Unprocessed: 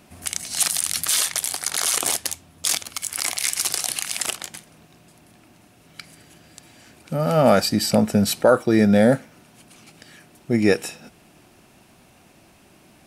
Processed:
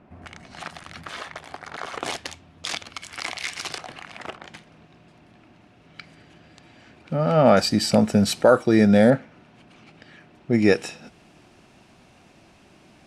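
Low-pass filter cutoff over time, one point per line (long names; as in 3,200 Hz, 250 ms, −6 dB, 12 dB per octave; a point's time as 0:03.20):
1,500 Hz
from 0:02.03 3,400 Hz
from 0:03.78 1,500 Hz
from 0:04.47 3,400 Hz
from 0:07.57 7,700 Hz
from 0:09.10 3,100 Hz
from 0:10.53 6,200 Hz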